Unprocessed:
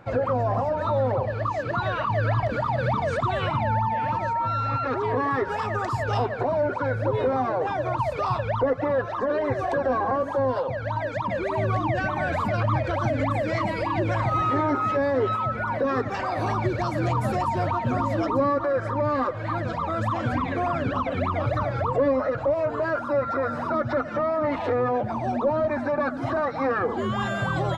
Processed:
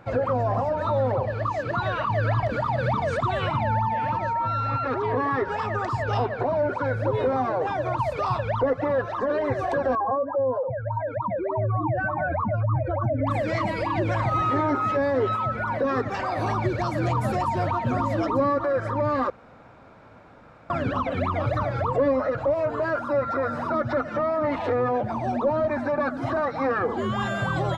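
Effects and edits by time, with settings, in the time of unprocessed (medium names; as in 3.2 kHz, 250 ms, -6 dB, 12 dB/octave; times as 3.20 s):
4.09–6.69 s: Bessel low-pass 5.6 kHz
9.95–13.27 s: spectral contrast enhancement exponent 1.9
19.30–20.70 s: room tone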